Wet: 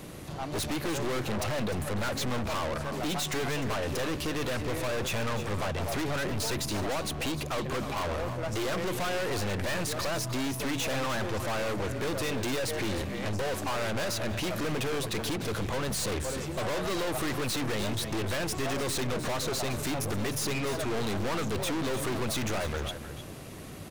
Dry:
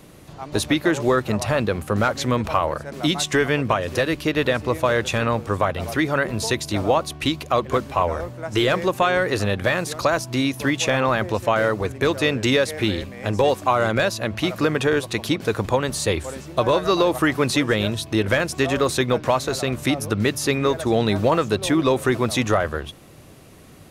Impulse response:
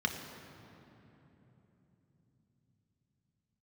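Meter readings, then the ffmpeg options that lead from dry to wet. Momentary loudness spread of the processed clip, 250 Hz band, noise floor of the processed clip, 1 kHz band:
2 LU, −10.5 dB, −40 dBFS, −11.0 dB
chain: -filter_complex "[0:a]asplit=2[link_01][link_02];[link_02]aecho=0:1:316:0.0708[link_03];[link_01][link_03]amix=inputs=2:normalize=0,aeval=exprs='(tanh(50.1*val(0)+0.3)-tanh(0.3))/50.1':channel_layout=same,asplit=2[link_04][link_05];[link_05]aecho=0:1:302:0.237[link_06];[link_04][link_06]amix=inputs=2:normalize=0,volume=4dB"

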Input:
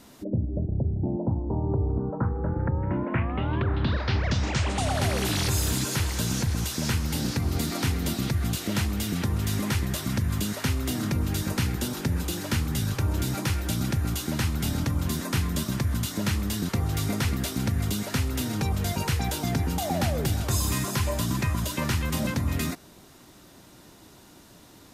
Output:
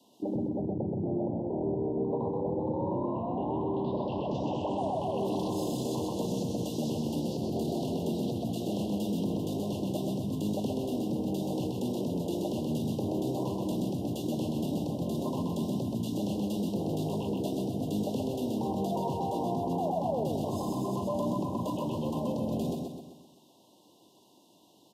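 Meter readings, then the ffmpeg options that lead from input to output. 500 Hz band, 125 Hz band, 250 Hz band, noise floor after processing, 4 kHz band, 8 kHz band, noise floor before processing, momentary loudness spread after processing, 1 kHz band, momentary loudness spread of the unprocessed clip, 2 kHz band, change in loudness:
+3.0 dB, −10.0 dB, −1.0 dB, −61 dBFS, −12.0 dB, −15.5 dB, −52 dBFS, 2 LU, −1.5 dB, 2 LU, below −20 dB, −5.0 dB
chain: -filter_complex "[0:a]highpass=frequency=89:width=0.5412,highpass=frequency=89:width=1.3066,afwtdn=0.0282,lowshelf=frequency=140:gain=-10.5,acrossover=split=190|4400[link_01][link_02][link_03];[link_02]acontrast=83[link_04];[link_01][link_04][link_03]amix=inputs=3:normalize=0,alimiter=level_in=0.5dB:limit=-24dB:level=0:latency=1:release=11,volume=-0.5dB,acrossover=split=130|770[link_05][link_06][link_07];[link_05]acompressor=threshold=-51dB:ratio=4[link_08];[link_06]acompressor=threshold=-32dB:ratio=4[link_09];[link_07]acompressor=threshold=-41dB:ratio=4[link_10];[link_08][link_09][link_10]amix=inputs=3:normalize=0,asuperstop=centerf=1700:order=20:qfactor=1,asplit=2[link_11][link_12];[link_12]aecho=0:1:128|256|384|512|640|768:0.668|0.321|0.154|0.0739|0.0355|0.017[link_13];[link_11][link_13]amix=inputs=2:normalize=0,volume=1.5dB"

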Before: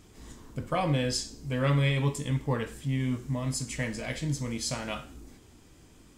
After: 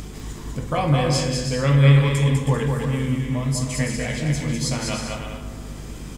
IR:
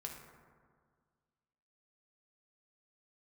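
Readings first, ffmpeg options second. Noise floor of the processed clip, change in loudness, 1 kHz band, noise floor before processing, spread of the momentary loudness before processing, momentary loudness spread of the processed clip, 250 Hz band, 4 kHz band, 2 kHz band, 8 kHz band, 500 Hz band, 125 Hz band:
−35 dBFS, +9.0 dB, +7.5 dB, −56 dBFS, 13 LU, 19 LU, +8.5 dB, +7.0 dB, +7.0 dB, +7.0 dB, +8.0 dB, +11.0 dB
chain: -filter_complex "[0:a]asplit=2[link_01][link_02];[1:a]atrim=start_sample=2205[link_03];[link_02][link_03]afir=irnorm=-1:irlink=0,volume=2dB[link_04];[link_01][link_04]amix=inputs=2:normalize=0,acompressor=mode=upward:threshold=-28dB:ratio=2.5,aecho=1:1:200|320|392|435.2|461.1:0.631|0.398|0.251|0.158|0.1,aeval=exprs='val(0)+0.0178*(sin(2*PI*50*n/s)+sin(2*PI*2*50*n/s)/2+sin(2*PI*3*50*n/s)/3+sin(2*PI*4*50*n/s)/4+sin(2*PI*5*50*n/s)/5)':channel_layout=same"

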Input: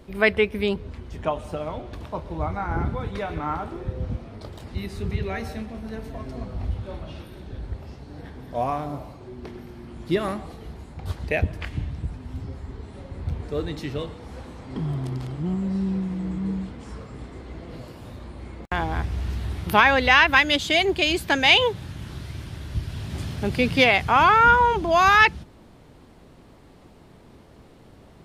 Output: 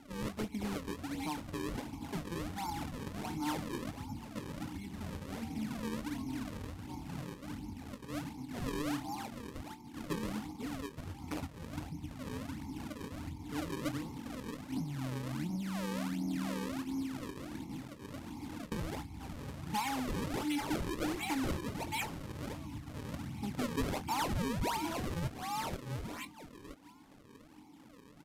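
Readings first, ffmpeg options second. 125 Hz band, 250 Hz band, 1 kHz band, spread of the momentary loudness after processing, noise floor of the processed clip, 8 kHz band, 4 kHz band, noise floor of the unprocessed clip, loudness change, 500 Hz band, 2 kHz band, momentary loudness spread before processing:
−11.5 dB, −7.0 dB, −17.5 dB, 10 LU, −56 dBFS, −4.0 dB, −18.5 dB, −50 dBFS, −17.0 dB, −16.5 dB, −22.5 dB, 24 LU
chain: -filter_complex "[0:a]asplit=5[link_01][link_02][link_03][link_04][link_05];[link_02]adelay=487,afreqshift=76,volume=-11dB[link_06];[link_03]adelay=974,afreqshift=152,volume=-18.5dB[link_07];[link_04]adelay=1461,afreqshift=228,volume=-26.1dB[link_08];[link_05]adelay=1948,afreqshift=304,volume=-33.6dB[link_09];[link_01][link_06][link_07][link_08][link_09]amix=inputs=5:normalize=0,acrossover=split=180|3700[link_10][link_11][link_12];[link_11]acompressor=mode=upward:threshold=-35dB:ratio=2.5[link_13];[link_10][link_13][link_12]amix=inputs=3:normalize=0,equalizer=frequency=360:width_type=o:width=0.71:gain=-14,agate=range=-9dB:threshold=-39dB:ratio=16:detection=peak,lowshelf=frequency=280:gain=11,bandreject=frequency=60:width_type=h:width=6,bandreject=frequency=120:width_type=h:width=6,bandreject=frequency=180:width_type=h:width=6,bandreject=frequency=240:width_type=h:width=6,acompressor=threshold=-24dB:ratio=4,asplit=3[link_14][link_15][link_16];[link_14]bandpass=frequency=300:width_type=q:width=8,volume=0dB[link_17];[link_15]bandpass=frequency=870:width_type=q:width=8,volume=-6dB[link_18];[link_16]bandpass=frequency=2240:width_type=q:width=8,volume=-9dB[link_19];[link_17][link_18][link_19]amix=inputs=3:normalize=0,acrusher=samples=36:mix=1:aa=0.000001:lfo=1:lforange=57.6:lforate=1.4,asoftclip=type=tanh:threshold=-36dB,asplit=2[link_20][link_21];[link_21]adelay=23,volume=-12dB[link_22];[link_20][link_22]amix=inputs=2:normalize=0,aresample=32000,aresample=44100,volume=7dB"

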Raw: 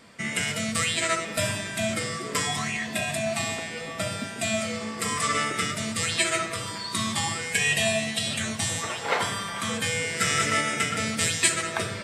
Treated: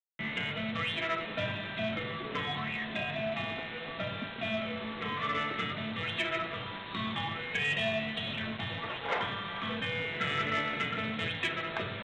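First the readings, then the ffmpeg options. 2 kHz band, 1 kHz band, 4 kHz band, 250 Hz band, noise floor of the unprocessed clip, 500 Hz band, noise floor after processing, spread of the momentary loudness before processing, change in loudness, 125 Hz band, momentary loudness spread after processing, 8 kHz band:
−6.0 dB, −6.0 dB, −7.5 dB, −6.0 dB, −35 dBFS, −6.0 dB, −41 dBFS, 7 LU, −7.5 dB, −6.5 dB, 6 LU, −33.0 dB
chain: -af "highpass=frequency=88:width=0.5412,highpass=frequency=88:width=1.3066,aresample=8000,acrusher=bits=5:mix=0:aa=0.000001,aresample=44100,asoftclip=type=tanh:threshold=-15.5dB,volume=-5.5dB"

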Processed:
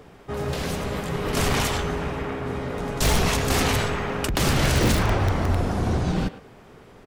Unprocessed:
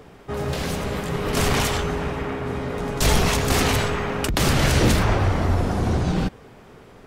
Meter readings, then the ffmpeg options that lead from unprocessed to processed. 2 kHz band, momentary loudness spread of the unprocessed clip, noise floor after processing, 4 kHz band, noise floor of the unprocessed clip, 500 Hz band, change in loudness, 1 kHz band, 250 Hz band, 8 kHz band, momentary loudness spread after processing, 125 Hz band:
−1.5 dB, 9 LU, −48 dBFS, −1.5 dB, −47 dBFS, −2.0 dB, −2.0 dB, −1.5 dB, −2.0 dB, −1.5 dB, 9 LU, −2.0 dB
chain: -filter_complex "[0:a]asplit=2[link_01][link_02];[link_02]aeval=exprs='(mod(3.16*val(0)+1,2)-1)/3.16':channel_layout=same,volume=-7dB[link_03];[link_01][link_03]amix=inputs=2:normalize=0,asplit=2[link_04][link_05];[link_05]adelay=110,highpass=300,lowpass=3400,asoftclip=type=hard:threshold=-15dB,volume=-13dB[link_06];[link_04][link_06]amix=inputs=2:normalize=0,volume=-5dB"

